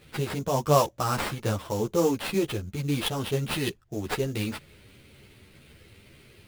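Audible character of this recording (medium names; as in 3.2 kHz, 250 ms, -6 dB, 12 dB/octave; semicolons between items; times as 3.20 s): aliases and images of a low sample rate 6.6 kHz, jitter 20%; a shimmering, thickened sound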